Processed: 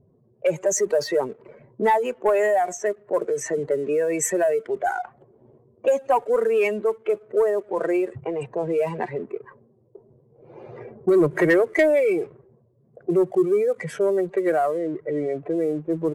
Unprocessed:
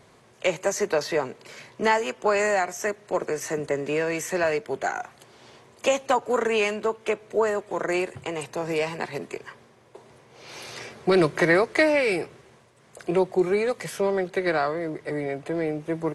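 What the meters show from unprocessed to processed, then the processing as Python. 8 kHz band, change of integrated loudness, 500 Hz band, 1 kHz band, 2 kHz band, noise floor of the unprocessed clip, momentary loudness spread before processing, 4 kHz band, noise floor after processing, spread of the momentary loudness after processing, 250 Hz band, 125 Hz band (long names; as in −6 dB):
+4.0 dB, +2.5 dB, +3.5 dB, +1.5 dB, −3.0 dB, −56 dBFS, 15 LU, can't be measured, −60 dBFS, 10 LU, +2.5 dB, 0.0 dB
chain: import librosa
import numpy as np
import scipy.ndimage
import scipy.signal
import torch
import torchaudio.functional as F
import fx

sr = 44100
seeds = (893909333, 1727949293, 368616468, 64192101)

y = fx.spec_expand(x, sr, power=1.9)
y = fx.leveller(y, sr, passes=1)
y = fx.high_shelf_res(y, sr, hz=6700.0, db=9.5, q=1.5)
y = fx.env_lowpass(y, sr, base_hz=350.0, full_db=-19.0)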